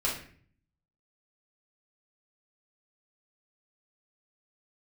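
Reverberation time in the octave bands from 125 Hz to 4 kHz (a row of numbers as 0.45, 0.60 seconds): 0.90, 0.75, 0.55, 0.45, 0.55, 0.40 seconds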